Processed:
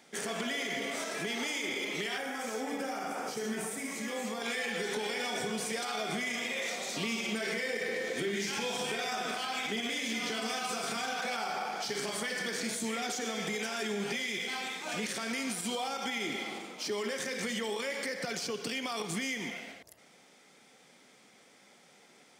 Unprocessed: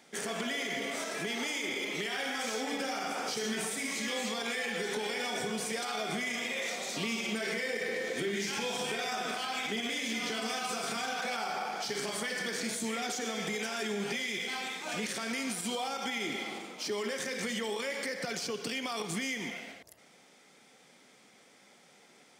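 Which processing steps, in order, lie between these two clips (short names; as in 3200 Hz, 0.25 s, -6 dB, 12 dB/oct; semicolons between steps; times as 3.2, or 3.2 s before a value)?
2.18–4.42 bell 3800 Hz -9.5 dB 1.6 oct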